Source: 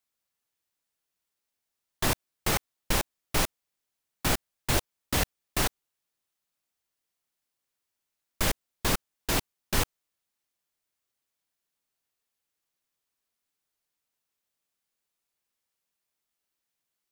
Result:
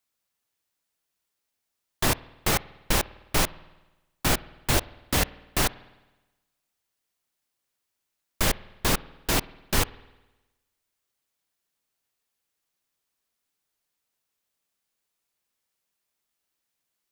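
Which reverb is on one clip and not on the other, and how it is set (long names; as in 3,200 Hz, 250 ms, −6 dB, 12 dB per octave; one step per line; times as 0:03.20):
spring reverb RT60 1.1 s, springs 52 ms, chirp 20 ms, DRR 19.5 dB
level +3 dB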